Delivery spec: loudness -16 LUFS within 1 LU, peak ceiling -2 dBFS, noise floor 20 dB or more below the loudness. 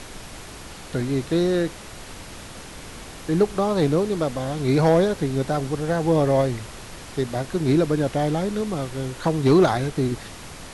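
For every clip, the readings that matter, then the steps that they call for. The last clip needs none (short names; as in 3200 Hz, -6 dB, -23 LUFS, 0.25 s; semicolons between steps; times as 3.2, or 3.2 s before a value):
clipped 0.4%; flat tops at -10.0 dBFS; noise floor -40 dBFS; noise floor target -43 dBFS; loudness -22.5 LUFS; peak -10.0 dBFS; loudness target -16.0 LUFS
-> clip repair -10 dBFS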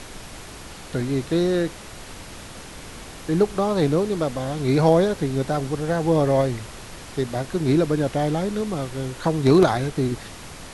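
clipped 0.0%; noise floor -40 dBFS; noise floor target -43 dBFS
-> noise print and reduce 6 dB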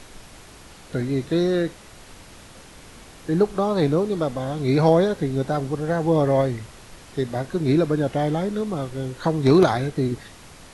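noise floor -45 dBFS; loudness -22.0 LUFS; peak -3.0 dBFS; loudness target -16.0 LUFS
-> gain +6 dB; limiter -2 dBFS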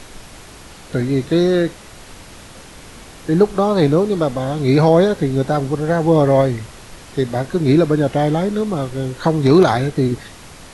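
loudness -16.5 LUFS; peak -2.0 dBFS; noise floor -39 dBFS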